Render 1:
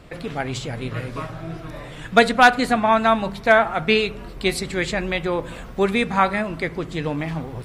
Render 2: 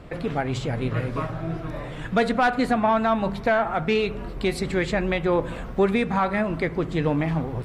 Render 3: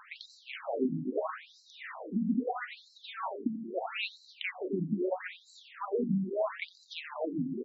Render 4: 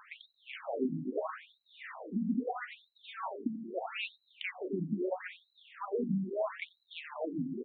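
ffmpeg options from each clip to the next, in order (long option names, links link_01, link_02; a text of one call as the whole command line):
ffmpeg -i in.wav -af "acontrast=67,alimiter=limit=-8dB:level=0:latency=1:release=211,highshelf=frequency=2600:gain=-10,volume=-3.5dB" out.wav
ffmpeg -i in.wav -af "acompressor=threshold=-24dB:ratio=6,aecho=1:1:88|176|264|352|440|528:0.251|0.133|0.0706|0.0374|0.0198|0.0105,afftfilt=real='re*between(b*sr/1024,220*pow(5500/220,0.5+0.5*sin(2*PI*0.77*pts/sr))/1.41,220*pow(5500/220,0.5+0.5*sin(2*PI*0.77*pts/sr))*1.41)':imag='im*between(b*sr/1024,220*pow(5500/220,0.5+0.5*sin(2*PI*0.77*pts/sr))/1.41,220*pow(5500/220,0.5+0.5*sin(2*PI*0.77*pts/sr))*1.41)':win_size=1024:overlap=0.75,volume=3dB" out.wav
ffmpeg -i in.wav -af "aresample=8000,aresample=44100,volume=-2.5dB" out.wav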